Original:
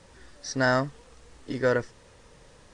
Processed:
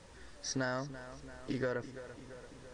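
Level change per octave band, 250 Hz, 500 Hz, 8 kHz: −8.0, −11.5, −3.5 decibels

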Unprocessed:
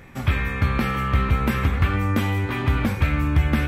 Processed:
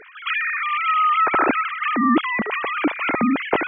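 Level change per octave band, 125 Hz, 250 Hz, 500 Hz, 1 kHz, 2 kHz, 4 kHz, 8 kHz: −22.0 dB, +2.5 dB, +4.5 dB, +9.5 dB, +5.5 dB, +3.0 dB, below −35 dB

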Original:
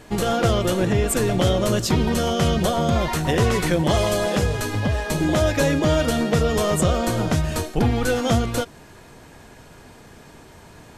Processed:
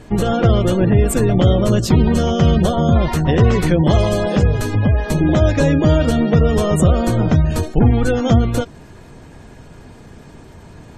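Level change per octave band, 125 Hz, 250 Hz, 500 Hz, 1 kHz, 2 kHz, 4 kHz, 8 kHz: +8.0, +6.5, +3.5, +1.5, 0.0, −1.0, −2.0 decibels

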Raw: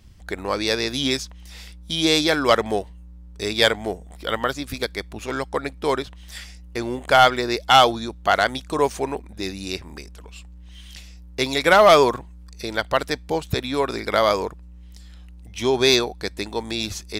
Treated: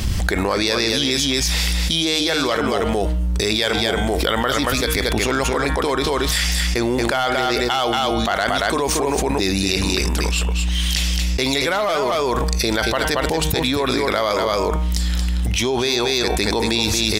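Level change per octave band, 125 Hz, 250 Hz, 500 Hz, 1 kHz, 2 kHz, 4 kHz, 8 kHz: +10.5, +5.5, +1.0, −1.0, +2.5, +4.5, +9.5 decibels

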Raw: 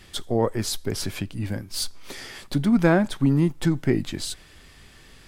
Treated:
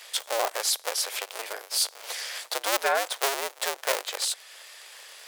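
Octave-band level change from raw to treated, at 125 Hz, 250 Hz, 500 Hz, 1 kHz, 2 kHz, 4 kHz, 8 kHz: below −40 dB, −28.5 dB, −4.5 dB, +3.5 dB, +2.0 dB, +4.5 dB, +6.0 dB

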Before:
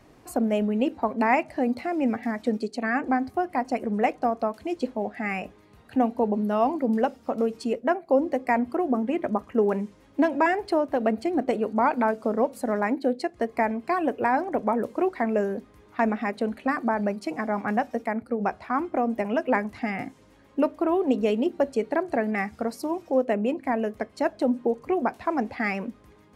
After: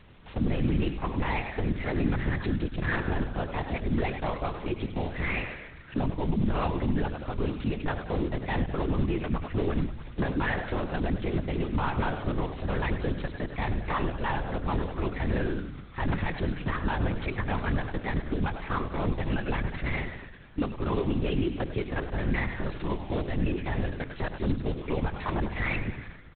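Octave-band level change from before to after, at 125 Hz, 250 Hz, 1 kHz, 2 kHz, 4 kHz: can't be measured, −5.0 dB, −8.0 dB, −2.5 dB, +3.0 dB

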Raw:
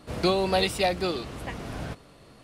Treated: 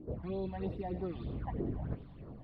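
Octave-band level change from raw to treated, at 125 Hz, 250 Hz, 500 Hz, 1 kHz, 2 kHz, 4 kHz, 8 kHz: −4.0 dB, −8.0 dB, −13.5 dB, −16.0 dB, −24.5 dB, −31.5 dB, below −40 dB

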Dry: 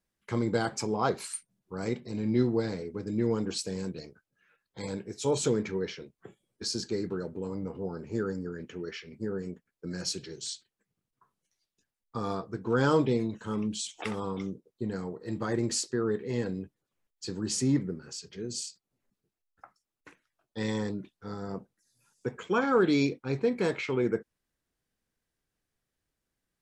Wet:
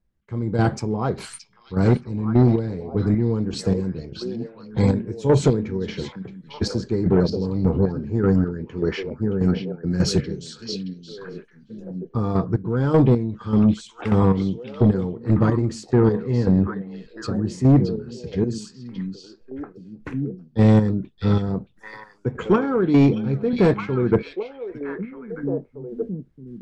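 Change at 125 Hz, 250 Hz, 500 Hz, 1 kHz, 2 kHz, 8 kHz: +16.0, +11.5, +8.0, +6.0, +3.0, −3.0 decibels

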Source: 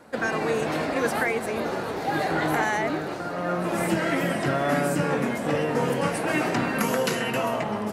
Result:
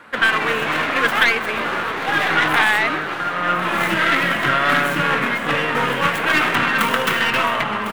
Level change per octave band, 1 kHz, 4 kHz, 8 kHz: +8.5, +13.0, +1.5 decibels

